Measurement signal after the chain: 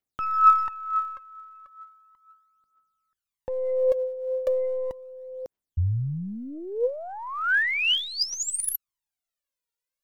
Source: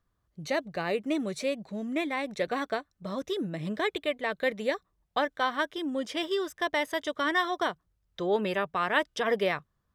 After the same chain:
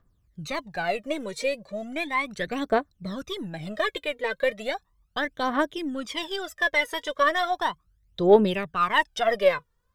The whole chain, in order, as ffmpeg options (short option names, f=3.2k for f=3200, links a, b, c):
-af "aeval=exprs='0.266*(cos(1*acos(clip(val(0)/0.266,-1,1)))-cos(1*PI/2))+0.00266*(cos(8*acos(clip(val(0)/0.266,-1,1)))-cos(8*PI/2))':c=same,aphaser=in_gain=1:out_gain=1:delay=2.2:decay=0.75:speed=0.36:type=triangular"